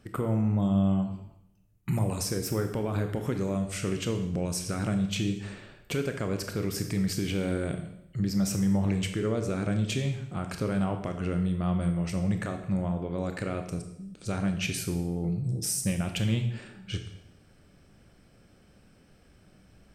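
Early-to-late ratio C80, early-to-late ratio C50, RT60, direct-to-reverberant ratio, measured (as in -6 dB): 10.5 dB, 8.0 dB, 0.75 s, 5.5 dB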